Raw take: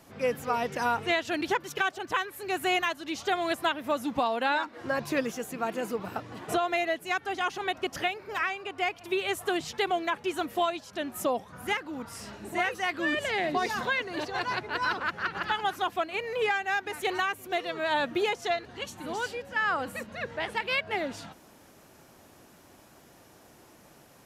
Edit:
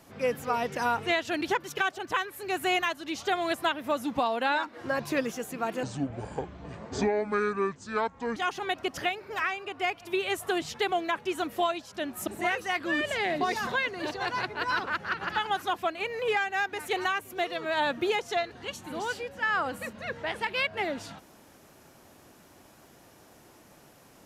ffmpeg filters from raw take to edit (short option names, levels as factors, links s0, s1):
-filter_complex "[0:a]asplit=4[s0][s1][s2][s3];[s0]atrim=end=5.834[s4];[s1]atrim=start=5.83:end=7.35,asetpts=PTS-STARTPTS,asetrate=26460,aresample=44100[s5];[s2]atrim=start=7.346:end=11.262[s6];[s3]atrim=start=12.408[s7];[s4][s5]acrossfade=d=0.004:c1=hsin:c2=hsin[s8];[s8][s6]acrossfade=d=0.004:c1=hsin:c2=hsin[s9];[s9][s7]acrossfade=d=0.004:c1=hsin:c2=hsin"